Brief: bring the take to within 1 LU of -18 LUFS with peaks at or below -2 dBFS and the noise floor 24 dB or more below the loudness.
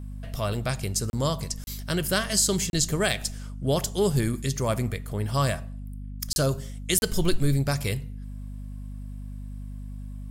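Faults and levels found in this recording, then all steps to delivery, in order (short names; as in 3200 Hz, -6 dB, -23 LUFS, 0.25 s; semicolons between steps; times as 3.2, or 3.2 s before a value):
dropouts 5; longest dropout 31 ms; hum 50 Hz; harmonics up to 250 Hz; hum level -34 dBFS; loudness -26.5 LUFS; peak -9.0 dBFS; loudness target -18.0 LUFS
-> interpolate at 1.1/1.64/2.7/6.33/6.99, 31 ms; de-hum 50 Hz, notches 5; gain +8.5 dB; limiter -2 dBFS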